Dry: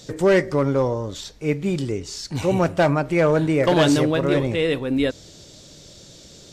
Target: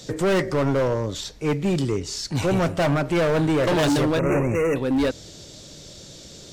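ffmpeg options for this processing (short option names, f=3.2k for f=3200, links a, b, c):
-filter_complex "[0:a]acrossover=split=100[a][b];[b]asoftclip=type=hard:threshold=-20.5dB[c];[a][c]amix=inputs=2:normalize=0,asettb=1/sr,asplit=3[d][e][f];[d]atrim=end=4.194[g];[e]atrim=start=4.19:end=4.76,asetpts=PTS-STARTPTS,afade=t=in:d=0.004:c=qsin,afade=t=out:st=0.566:d=0.004:c=qsin,asuperstop=centerf=4000:order=20:qfactor=1.3[h];[f]atrim=start=4.756[i];[g][h]acrossfade=d=0.004:c1=hsin:c2=qsin[j];[j][i]acrossfade=d=0.004:c1=qsin:c2=hsin,volume=2.5dB"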